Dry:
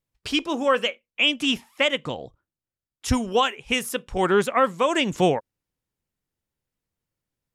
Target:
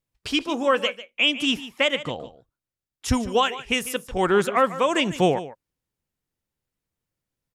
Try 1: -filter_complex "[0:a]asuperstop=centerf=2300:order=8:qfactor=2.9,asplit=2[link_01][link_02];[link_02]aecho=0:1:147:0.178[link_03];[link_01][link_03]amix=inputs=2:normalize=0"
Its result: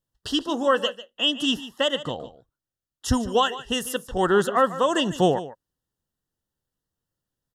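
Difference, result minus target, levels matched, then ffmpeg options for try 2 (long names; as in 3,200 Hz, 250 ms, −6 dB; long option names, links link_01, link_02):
2,000 Hz band −3.5 dB
-filter_complex "[0:a]asplit=2[link_01][link_02];[link_02]aecho=0:1:147:0.178[link_03];[link_01][link_03]amix=inputs=2:normalize=0"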